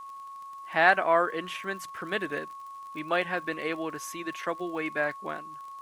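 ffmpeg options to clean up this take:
-af "adeclick=t=4,bandreject=f=1100:w=30,agate=range=0.0891:threshold=0.0178"

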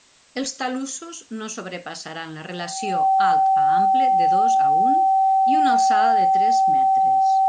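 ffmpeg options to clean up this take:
-af "bandreject=f=770:w=30,agate=range=0.0891:threshold=0.0316"

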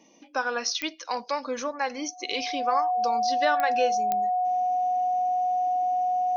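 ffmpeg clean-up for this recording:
-af "adeclick=t=4,bandreject=f=730:w=30"

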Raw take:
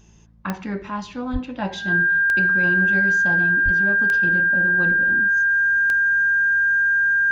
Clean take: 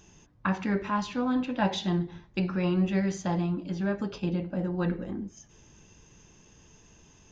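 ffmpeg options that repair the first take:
-filter_complex "[0:a]adeclick=t=4,bandreject=f=55.3:t=h:w=4,bandreject=f=110.6:t=h:w=4,bandreject=f=165.9:t=h:w=4,bandreject=f=221.2:t=h:w=4,bandreject=f=1600:w=30,asplit=3[s0][s1][s2];[s0]afade=t=out:st=1.32:d=0.02[s3];[s1]highpass=f=140:w=0.5412,highpass=f=140:w=1.3066,afade=t=in:st=1.32:d=0.02,afade=t=out:st=1.44:d=0.02[s4];[s2]afade=t=in:st=1.44:d=0.02[s5];[s3][s4][s5]amix=inputs=3:normalize=0,asplit=3[s6][s7][s8];[s6]afade=t=out:st=3.64:d=0.02[s9];[s7]highpass=f=140:w=0.5412,highpass=f=140:w=1.3066,afade=t=in:st=3.64:d=0.02,afade=t=out:st=3.76:d=0.02[s10];[s8]afade=t=in:st=3.76:d=0.02[s11];[s9][s10][s11]amix=inputs=3:normalize=0"

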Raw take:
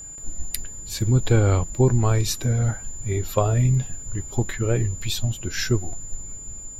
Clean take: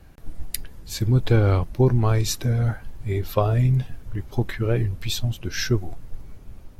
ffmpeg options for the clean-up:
-af "bandreject=f=7100:w=30"

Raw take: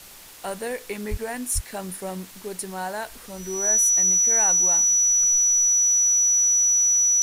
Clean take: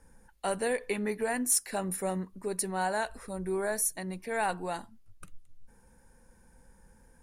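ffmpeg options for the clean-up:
-filter_complex "[0:a]bandreject=f=5900:w=30,asplit=3[s0][s1][s2];[s0]afade=t=out:st=1.1:d=0.02[s3];[s1]highpass=f=140:w=0.5412,highpass=f=140:w=1.3066,afade=t=in:st=1.1:d=0.02,afade=t=out:st=1.22:d=0.02[s4];[s2]afade=t=in:st=1.22:d=0.02[s5];[s3][s4][s5]amix=inputs=3:normalize=0,asplit=3[s6][s7][s8];[s6]afade=t=out:st=1.54:d=0.02[s9];[s7]highpass=f=140:w=0.5412,highpass=f=140:w=1.3066,afade=t=in:st=1.54:d=0.02,afade=t=out:st=1.66:d=0.02[s10];[s8]afade=t=in:st=1.66:d=0.02[s11];[s9][s10][s11]amix=inputs=3:normalize=0,afwtdn=0.0063"

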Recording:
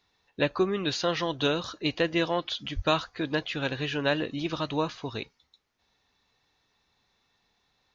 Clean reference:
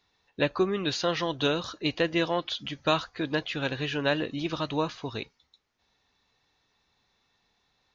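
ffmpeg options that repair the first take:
-filter_complex "[0:a]asplit=3[s0][s1][s2];[s0]afade=t=out:st=2.75:d=0.02[s3];[s1]highpass=f=140:w=0.5412,highpass=f=140:w=1.3066,afade=t=in:st=2.75:d=0.02,afade=t=out:st=2.87:d=0.02[s4];[s2]afade=t=in:st=2.87:d=0.02[s5];[s3][s4][s5]amix=inputs=3:normalize=0"

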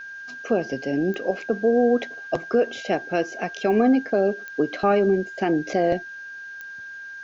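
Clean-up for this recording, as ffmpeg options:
-af "adeclick=t=4,bandreject=f=1600:w=30,agate=range=0.0891:threshold=0.0316"

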